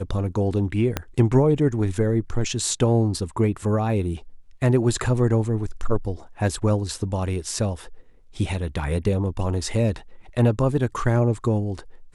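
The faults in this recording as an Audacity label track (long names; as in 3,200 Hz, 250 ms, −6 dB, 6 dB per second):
0.970000	0.970000	click −8 dBFS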